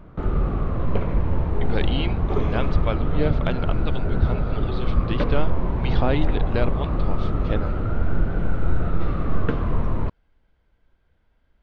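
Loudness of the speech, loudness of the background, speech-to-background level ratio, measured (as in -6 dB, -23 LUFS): -30.0 LUFS, -26.0 LUFS, -4.0 dB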